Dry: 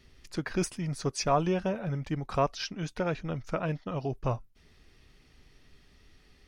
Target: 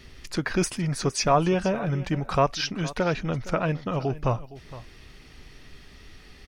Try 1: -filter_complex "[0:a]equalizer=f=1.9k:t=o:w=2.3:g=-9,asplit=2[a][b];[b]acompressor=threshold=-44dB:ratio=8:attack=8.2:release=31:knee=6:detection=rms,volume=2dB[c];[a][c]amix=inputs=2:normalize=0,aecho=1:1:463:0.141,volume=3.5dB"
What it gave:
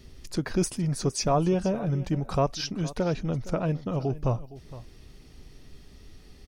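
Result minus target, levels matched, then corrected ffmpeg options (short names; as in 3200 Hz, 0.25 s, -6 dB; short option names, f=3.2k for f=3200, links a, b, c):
2000 Hz band -7.5 dB
-filter_complex "[0:a]equalizer=f=1.9k:t=o:w=2.3:g=2,asplit=2[a][b];[b]acompressor=threshold=-44dB:ratio=8:attack=8.2:release=31:knee=6:detection=rms,volume=2dB[c];[a][c]amix=inputs=2:normalize=0,aecho=1:1:463:0.141,volume=3.5dB"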